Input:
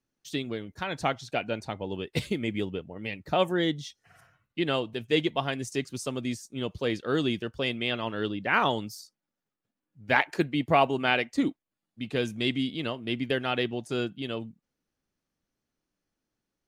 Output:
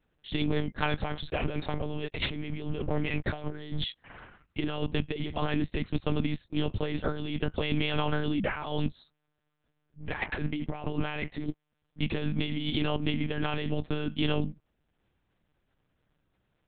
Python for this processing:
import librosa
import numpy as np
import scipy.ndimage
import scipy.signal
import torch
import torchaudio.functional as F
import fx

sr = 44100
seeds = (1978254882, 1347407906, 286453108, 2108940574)

y = fx.leveller(x, sr, passes=2, at=(1.4, 3.84))
y = fx.transient(y, sr, attack_db=-7, sustain_db=-2)
y = fx.over_compress(y, sr, threshold_db=-36.0, ratio=-1.0)
y = fx.lpc_monotone(y, sr, seeds[0], pitch_hz=150.0, order=8)
y = F.gain(torch.from_numpy(y), 5.5).numpy()